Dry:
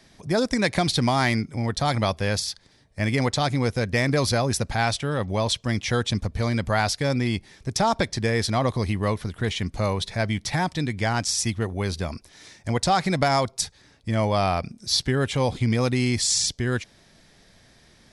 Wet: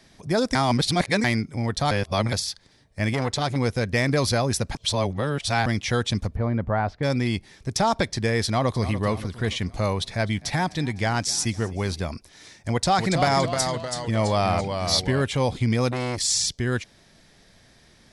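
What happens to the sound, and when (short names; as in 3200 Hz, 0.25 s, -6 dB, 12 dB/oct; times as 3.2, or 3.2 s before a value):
0.55–1.24 reverse
1.91–2.33 reverse
3.13–3.56 core saturation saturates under 700 Hz
4.75–5.66 reverse
6.35–7.03 LPF 1200 Hz
8.45–8.95 echo throw 0.29 s, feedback 50%, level -12.5 dB
10–12 frequency-shifting echo 0.253 s, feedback 56%, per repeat +40 Hz, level -22 dB
12.71–15.22 echoes that change speed 0.276 s, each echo -1 st, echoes 3, each echo -6 dB
15.91–16.54 core saturation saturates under 1100 Hz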